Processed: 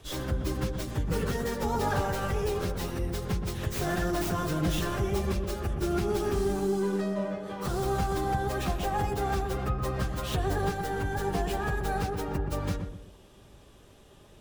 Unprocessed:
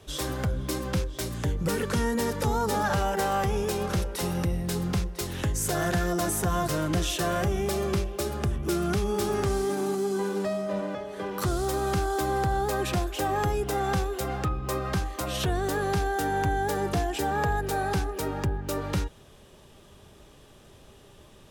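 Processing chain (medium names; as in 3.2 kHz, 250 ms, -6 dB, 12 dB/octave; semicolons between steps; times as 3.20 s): tracing distortion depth 0.16 ms; plain phase-vocoder stretch 0.67×; filtered feedback delay 123 ms, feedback 39%, low-pass 990 Hz, level -4.5 dB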